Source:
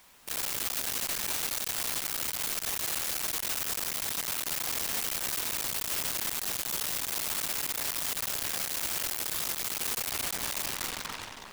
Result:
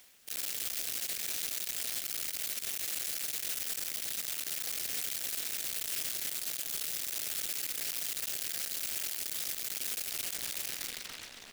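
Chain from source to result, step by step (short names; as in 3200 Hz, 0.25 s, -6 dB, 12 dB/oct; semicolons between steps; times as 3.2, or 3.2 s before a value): low shelf 310 Hz -10 dB; on a send: echo 0.126 s -11 dB; on the sum: reverse; upward compressor, threshold -38 dBFS; reverse; AM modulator 240 Hz, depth 70%; bell 1000 Hz -12.5 dB 1 oct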